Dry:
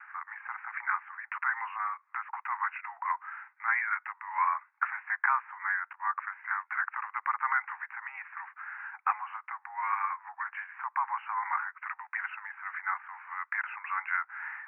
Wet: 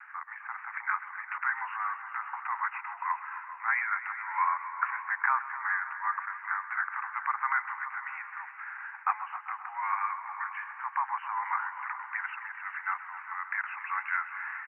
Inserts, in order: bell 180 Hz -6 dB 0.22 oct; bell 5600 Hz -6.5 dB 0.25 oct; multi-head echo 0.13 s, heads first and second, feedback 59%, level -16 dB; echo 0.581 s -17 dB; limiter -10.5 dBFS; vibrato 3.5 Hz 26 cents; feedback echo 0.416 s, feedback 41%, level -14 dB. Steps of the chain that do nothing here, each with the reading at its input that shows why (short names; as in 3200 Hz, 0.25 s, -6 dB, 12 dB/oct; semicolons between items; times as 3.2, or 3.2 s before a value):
bell 180 Hz: input band starts at 680 Hz; bell 5600 Hz: input band ends at 2600 Hz; limiter -10.5 dBFS: input peak -12.5 dBFS